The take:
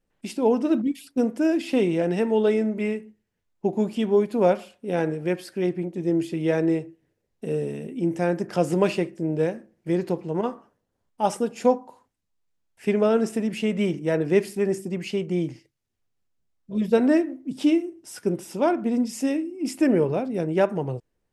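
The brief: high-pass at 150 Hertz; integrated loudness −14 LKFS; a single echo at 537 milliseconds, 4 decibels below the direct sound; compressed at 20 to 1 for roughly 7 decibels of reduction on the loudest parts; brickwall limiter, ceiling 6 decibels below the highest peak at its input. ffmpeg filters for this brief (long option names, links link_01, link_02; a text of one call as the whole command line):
ffmpeg -i in.wav -af "highpass=150,acompressor=threshold=-21dB:ratio=20,alimiter=limit=-19dB:level=0:latency=1,aecho=1:1:537:0.631,volume=14.5dB" out.wav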